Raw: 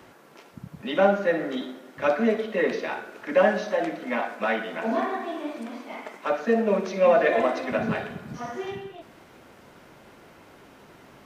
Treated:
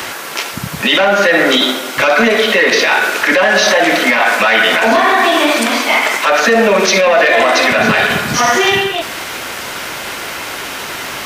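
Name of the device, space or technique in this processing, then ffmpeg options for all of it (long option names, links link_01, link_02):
mastering chain: -filter_complex "[0:a]asettb=1/sr,asplit=3[link_01][link_02][link_03];[link_01]atrim=end=1.464[link_04];[link_02]atrim=start=1.46:end=2.22,asetpts=PTS-STARTPTS,afade=type=in:duration=0.004:curve=qsin,afade=type=out:start_time=0.756:duration=0.004:curve=qsin,bandreject=frequency=1800:width=7.3[link_05];[link_03]atrim=start=2.216[link_06];[link_04][link_05]acrossfade=duration=0.004:curve1=hsin:curve2=qsin[link_07];[link_07][link_06]acrossfade=duration=0.004:curve1=qsin:curve2=hsin,equalizer=frequency=180:width_type=o:width=1.2:gain=-3.5,acompressor=threshold=-26dB:ratio=2.5,asoftclip=type=tanh:threshold=-20dB,tiltshelf=frequency=1100:gain=-8.5,asoftclip=type=hard:threshold=-18dB,alimiter=level_in=28.5dB:limit=-1dB:release=50:level=0:latency=1,volume=-1dB"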